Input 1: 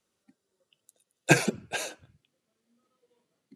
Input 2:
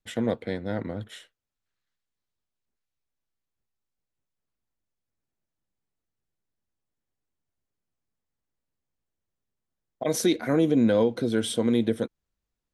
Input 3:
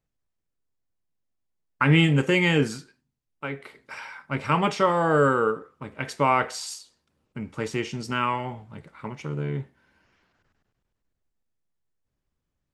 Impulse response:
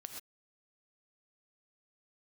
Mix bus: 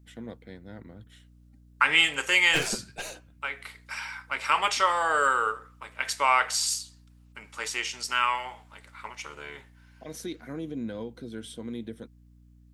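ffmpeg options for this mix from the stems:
-filter_complex "[0:a]aeval=exprs='(tanh(17.8*val(0)+0.55)-tanh(0.55))/17.8':channel_layout=same,adelay=1250,volume=-1.5dB[link_01];[1:a]equalizer=frequency=580:width=1.5:gain=-5,volume=-12.5dB[link_02];[2:a]highpass=950,highshelf=frequency=3900:gain=9,volume=1.5dB[link_03];[link_01][link_02][link_03]amix=inputs=3:normalize=0,aeval=exprs='val(0)+0.002*(sin(2*PI*60*n/s)+sin(2*PI*2*60*n/s)/2+sin(2*PI*3*60*n/s)/3+sin(2*PI*4*60*n/s)/4+sin(2*PI*5*60*n/s)/5)':channel_layout=same"

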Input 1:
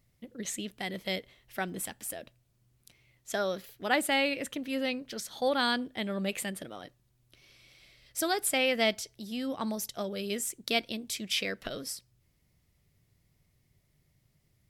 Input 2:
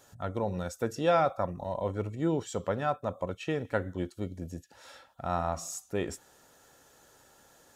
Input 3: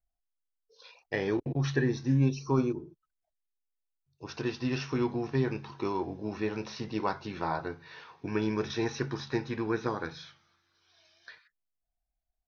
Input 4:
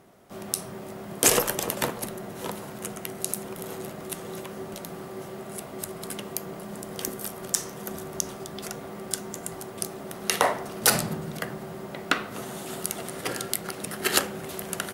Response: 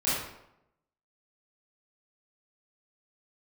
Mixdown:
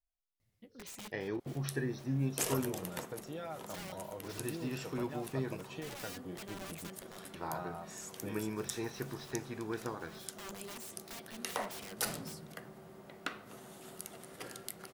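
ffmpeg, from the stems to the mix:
-filter_complex "[0:a]acompressor=threshold=-36dB:ratio=2,flanger=delay=9:depth=5.7:regen=34:speed=0.61:shape=sinusoidal,aeval=exprs='(mod(66.8*val(0)+1,2)-1)/66.8':channel_layout=same,adelay=400,volume=-5dB[link_01];[1:a]aecho=1:1:6.4:0.65,acompressor=threshold=-33dB:ratio=4,adelay=2300,volume=-9dB[link_02];[2:a]volume=-8.5dB,asplit=3[link_03][link_04][link_05];[link_03]atrim=end=5.77,asetpts=PTS-STARTPTS,afade=type=out:start_time=5.766:duration=0.004:curve=hsin[link_06];[link_04]atrim=start=5.77:end=7.34,asetpts=PTS-STARTPTS,volume=0[link_07];[link_05]atrim=start=7.34,asetpts=PTS-STARTPTS,afade=type=in:duration=0.004:curve=hsin[link_08];[link_06][link_07][link_08]concat=n=3:v=0:a=1,asplit=2[link_09][link_10];[3:a]adelay=1150,volume=-15.5dB[link_11];[link_10]apad=whole_len=665585[link_12];[link_01][link_12]sidechaincompress=threshold=-49dB:ratio=8:attack=10:release=390[link_13];[link_13][link_02][link_09][link_11]amix=inputs=4:normalize=0"

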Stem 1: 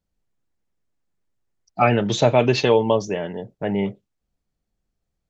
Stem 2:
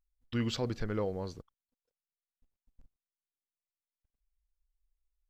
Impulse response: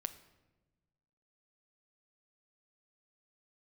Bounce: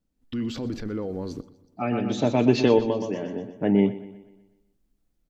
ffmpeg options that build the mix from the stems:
-filter_complex "[0:a]volume=-4dB,asplit=3[link_01][link_02][link_03];[link_02]volume=-14.5dB[link_04];[link_03]volume=-15dB[link_05];[1:a]dynaudnorm=framelen=150:gausssize=3:maxgain=10dB,alimiter=level_in=3dB:limit=-24dB:level=0:latency=1:release=12,volume=-3dB,volume=-5dB,asplit=4[link_06][link_07][link_08][link_09];[link_07]volume=-7dB[link_10];[link_08]volume=-18dB[link_11];[link_09]apad=whole_len=233639[link_12];[link_01][link_12]sidechaincompress=threshold=-60dB:ratio=8:attack=5:release=946[link_13];[2:a]atrim=start_sample=2205[link_14];[link_04][link_10]amix=inputs=2:normalize=0[link_15];[link_15][link_14]afir=irnorm=-1:irlink=0[link_16];[link_05][link_11]amix=inputs=2:normalize=0,aecho=0:1:123|246|369|492|615|738|861:1|0.49|0.24|0.118|0.0576|0.0282|0.0138[link_17];[link_13][link_06][link_16][link_17]amix=inputs=4:normalize=0,equalizer=frequency=270:width=1.5:gain=13"

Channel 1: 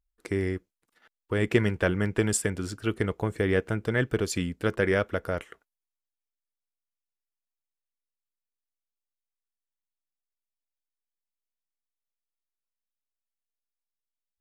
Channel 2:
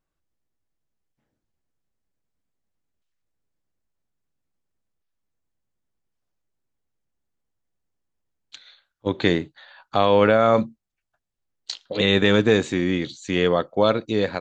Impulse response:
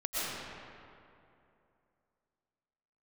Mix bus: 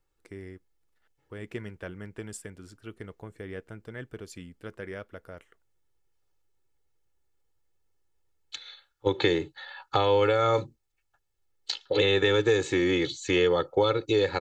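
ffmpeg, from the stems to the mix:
-filter_complex "[0:a]volume=-14.5dB[link_01];[1:a]aecho=1:1:2.3:0.95,acrossover=split=280|4300[link_02][link_03][link_04];[link_02]acompressor=threshold=-33dB:ratio=4[link_05];[link_03]acompressor=threshold=-24dB:ratio=4[link_06];[link_04]acompressor=threshold=-41dB:ratio=4[link_07];[link_05][link_06][link_07]amix=inputs=3:normalize=0,volume=1dB[link_08];[link_01][link_08]amix=inputs=2:normalize=0"

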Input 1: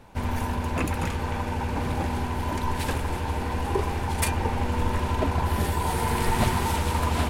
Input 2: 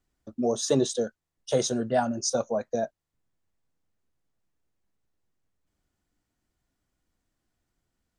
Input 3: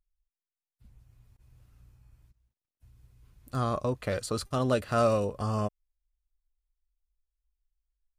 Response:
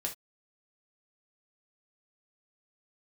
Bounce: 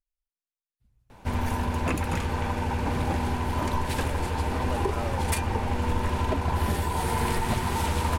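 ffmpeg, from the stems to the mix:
-filter_complex "[0:a]equalizer=frequency=13000:width=2.1:gain=-2,adelay=1100,volume=0.5dB[link_01];[2:a]volume=-10dB[link_02];[link_01][link_02]amix=inputs=2:normalize=0,alimiter=limit=-15dB:level=0:latency=1:release=380"

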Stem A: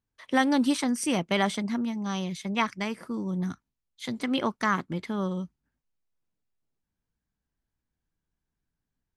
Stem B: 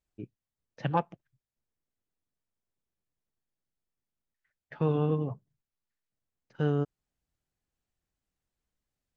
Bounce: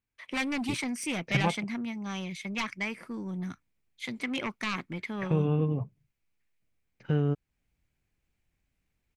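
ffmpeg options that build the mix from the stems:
ffmpeg -i stem1.wav -i stem2.wav -filter_complex "[0:a]aeval=exprs='0.299*sin(PI/2*3.16*val(0)/0.299)':channel_layout=same,volume=-18.5dB[link_01];[1:a]lowshelf=frequency=350:gain=9,acompressor=threshold=-36dB:ratio=1.5,adelay=500,volume=1.5dB[link_02];[link_01][link_02]amix=inputs=2:normalize=0,equalizer=frequency=2300:width=2.4:gain=12" out.wav

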